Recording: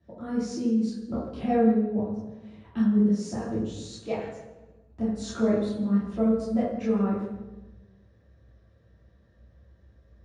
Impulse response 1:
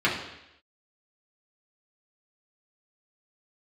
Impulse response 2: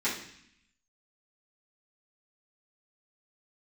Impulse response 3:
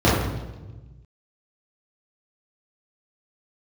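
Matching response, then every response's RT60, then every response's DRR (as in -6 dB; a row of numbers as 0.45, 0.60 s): 3; 0.85, 0.65, 1.2 s; -6.5, -12.0, -10.0 dB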